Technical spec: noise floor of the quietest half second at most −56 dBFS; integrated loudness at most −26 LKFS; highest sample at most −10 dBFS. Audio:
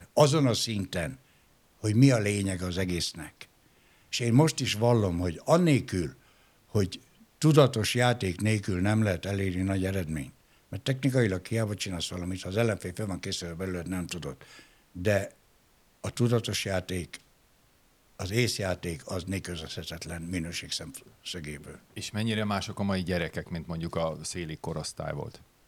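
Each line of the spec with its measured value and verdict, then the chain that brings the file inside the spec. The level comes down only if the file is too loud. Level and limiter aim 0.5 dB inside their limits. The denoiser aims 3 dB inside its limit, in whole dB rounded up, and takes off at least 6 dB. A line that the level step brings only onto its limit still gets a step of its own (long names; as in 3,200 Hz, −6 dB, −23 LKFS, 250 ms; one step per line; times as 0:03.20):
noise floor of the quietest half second −64 dBFS: in spec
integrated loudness −29.0 LKFS: in spec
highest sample −5.5 dBFS: out of spec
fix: brickwall limiter −10.5 dBFS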